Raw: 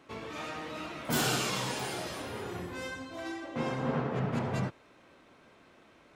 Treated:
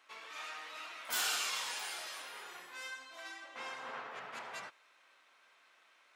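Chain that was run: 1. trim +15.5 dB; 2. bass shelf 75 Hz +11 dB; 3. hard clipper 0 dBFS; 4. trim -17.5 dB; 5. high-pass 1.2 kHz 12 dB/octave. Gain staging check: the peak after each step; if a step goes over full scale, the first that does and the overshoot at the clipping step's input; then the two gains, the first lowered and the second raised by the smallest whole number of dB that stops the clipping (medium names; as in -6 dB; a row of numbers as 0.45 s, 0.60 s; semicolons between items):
-2.0 dBFS, -1.5 dBFS, -1.5 dBFS, -19.0 dBFS, -22.0 dBFS; nothing clips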